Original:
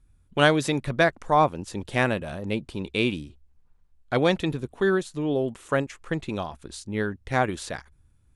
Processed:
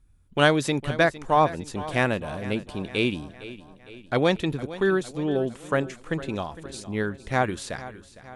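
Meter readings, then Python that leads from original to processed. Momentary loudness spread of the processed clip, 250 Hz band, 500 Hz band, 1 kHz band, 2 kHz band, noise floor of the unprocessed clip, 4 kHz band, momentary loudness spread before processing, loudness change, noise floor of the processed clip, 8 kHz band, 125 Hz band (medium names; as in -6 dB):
14 LU, 0.0 dB, 0.0 dB, 0.0 dB, 0.0 dB, -62 dBFS, 0.0 dB, 12 LU, 0.0 dB, -52 dBFS, 0.0 dB, 0.0 dB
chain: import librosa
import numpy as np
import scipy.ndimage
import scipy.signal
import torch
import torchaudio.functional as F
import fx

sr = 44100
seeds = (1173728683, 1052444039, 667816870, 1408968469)

y = x + fx.echo_feedback(x, sr, ms=458, feedback_pct=54, wet_db=-16.0, dry=0)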